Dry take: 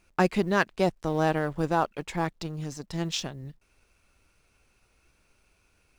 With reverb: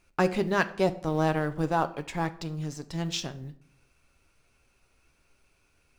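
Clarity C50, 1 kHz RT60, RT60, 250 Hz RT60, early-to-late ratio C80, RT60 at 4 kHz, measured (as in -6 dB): 16.5 dB, 0.60 s, 0.65 s, 0.95 s, 20.0 dB, 0.40 s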